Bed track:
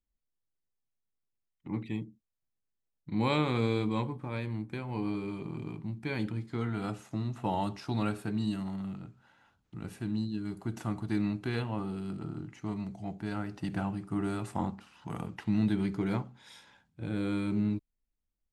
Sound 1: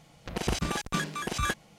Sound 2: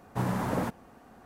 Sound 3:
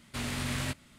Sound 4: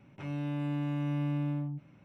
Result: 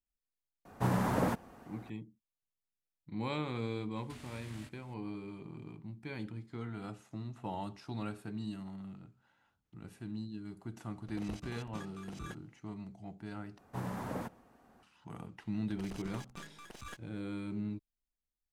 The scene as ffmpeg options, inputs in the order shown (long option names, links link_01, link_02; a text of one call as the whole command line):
ffmpeg -i bed.wav -i cue0.wav -i cue1.wav -i cue2.wav -filter_complex "[2:a]asplit=2[link_01][link_02];[1:a]asplit=2[link_03][link_04];[0:a]volume=-8.5dB[link_05];[3:a]acompressor=threshold=-39dB:ratio=6:attack=3.2:release=140:knee=1:detection=peak[link_06];[link_03]tiltshelf=frequency=970:gain=3[link_07];[link_02]asplit=2[link_08][link_09];[link_09]adelay=134.1,volume=-25dB,highshelf=frequency=4000:gain=-3.02[link_10];[link_08][link_10]amix=inputs=2:normalize=0[link_11];[link_04]aeval=exprs='if(lt(val(0),0),0.251*val(0),val(0))':channel_layout=same[link_12];[link_05]asplit=2[link_13][link_14];[link_13]atrim=end=13.584[link_15];[link_11]atrim=end=1.25,asetpts=PTS-STARTPTS,volume=-9.5dB[link_16];[link_14]atrim=start=14.826[link_17];[link_01]atrim=end=1.25,asetpts=PTS-STARTPTS,volume=-1dB,afade=type=in:duration=0.004:curve=hsin,afade=type=out:start_time=1.246:duration=0.004:curve=hsin,adelay=650[link_18];[link_06]atrim=end=0.98,asetpts=PTS-STARTPTS,volume=-9dB,afade=type=in:duration=0.004:curve=hsin,afade=type=out:start_time=0.976:duration=0.004:curve=hsin,adelay=3960[link_19];[link_07]atrim=end=1.78,asetpts=PTS-STARTPTS,volume=-18dB,afade=type=in:duration=0.004:curve=hsin,afade=type=out:start_time=1.776:duration=0.004:curve=hsin,adelay=10810[link_20];[link_12]atrim=end=1.78,asetpts=PTS-STARTPTS,volume=-15.5dB,afade=type=in:duration=0.004:curve=hsin,afade=type=out:start_time=1.776:duration=0.004:curve=hsin,adelay=15430[link_21];[link_15][link_16]acrossfade=duration=0.004:curve1=hsin:curve2=hsin[link_22];[link_22][link_17]acrossfade=duration=0.004:curve1=hsin:curve2=hsin[link_23];[link_23][link_18][link_19][link_20][link_21]amix=inputs=5:normalize=0" out.wav